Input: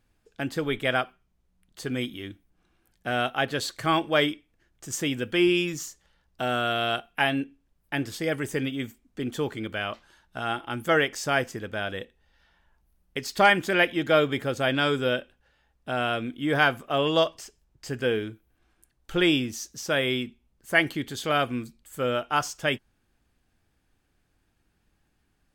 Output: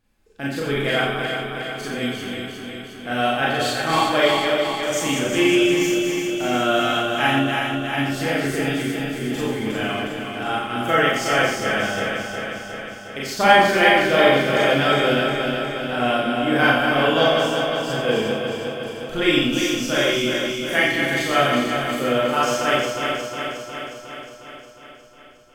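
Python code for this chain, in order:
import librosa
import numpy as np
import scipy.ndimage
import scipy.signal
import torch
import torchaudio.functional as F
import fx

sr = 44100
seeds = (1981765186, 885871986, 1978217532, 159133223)

p1 = fx.reverse_delay_fb(x, sr, ms=180, feedback_pct=80, wet_db=-5.0)
p2 = p1 + fx.echo_single(p1, sr, ms=88, db=-7.0, dry=0)
p3 = fx.rev_schroeder(p2, sr, rt60_s=0.35, comb_ms=29, drr_db=-4.5)
y = p3 * librosa.db_to_amplitude(-2.0)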